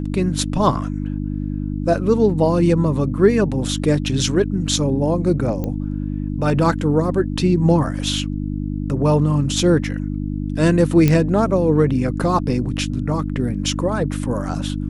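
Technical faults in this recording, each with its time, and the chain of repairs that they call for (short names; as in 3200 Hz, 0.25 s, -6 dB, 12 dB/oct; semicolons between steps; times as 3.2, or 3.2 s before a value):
hum 50 Hz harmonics 6 -24 dBFS
5.64 pop -13 dBFS
11.08 pop -4 dBFS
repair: de-click; de-hum 50 Hz, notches 6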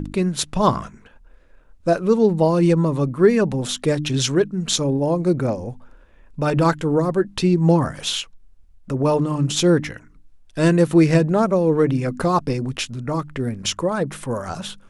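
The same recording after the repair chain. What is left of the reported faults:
none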